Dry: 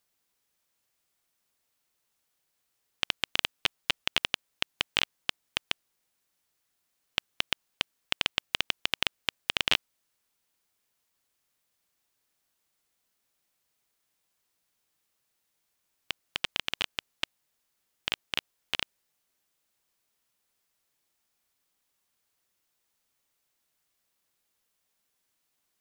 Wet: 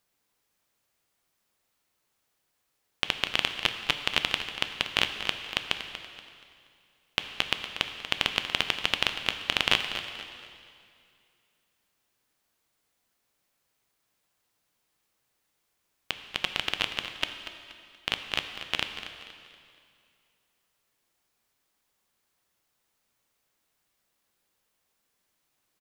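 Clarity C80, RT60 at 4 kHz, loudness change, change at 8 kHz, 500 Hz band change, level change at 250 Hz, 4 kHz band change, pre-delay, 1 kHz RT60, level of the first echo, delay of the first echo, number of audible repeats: 7.0 dB, 2.2 s, +2.5 dB, +1.0 dB, +5.0 dB, +5.0 dB, +2.5 dB, 4 ms, 2.3 s, -11.5 dB, 0.238 s, 3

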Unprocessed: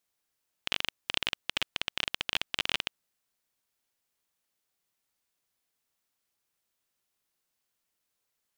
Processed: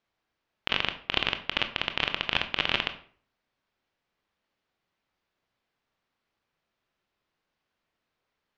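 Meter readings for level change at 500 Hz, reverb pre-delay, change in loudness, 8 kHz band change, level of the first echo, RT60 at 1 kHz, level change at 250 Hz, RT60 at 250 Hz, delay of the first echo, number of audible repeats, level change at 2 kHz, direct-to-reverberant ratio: +8.0 dB, 20 ms, +4.0 dB, -9.5 dB, none, 0.50 s, +8.5 dB, 0.55 s, none, none, +5.0 dB, 7.5 dB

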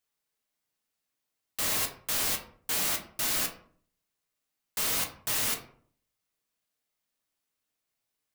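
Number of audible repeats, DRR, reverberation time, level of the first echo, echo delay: none, 2.0 dB, 0.55 s, none, none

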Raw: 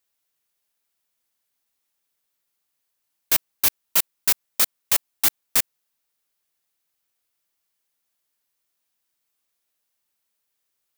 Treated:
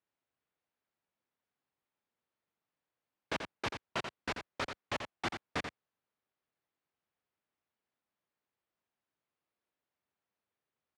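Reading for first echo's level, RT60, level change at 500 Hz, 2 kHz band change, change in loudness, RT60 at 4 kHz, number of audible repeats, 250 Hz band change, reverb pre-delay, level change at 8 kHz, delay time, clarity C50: -7.5 dB, none, -1.5 dB, -7.5 dB, -19.0 dB, none, 1, -0.5 dB, none, -29.0 dB, 86 ms, none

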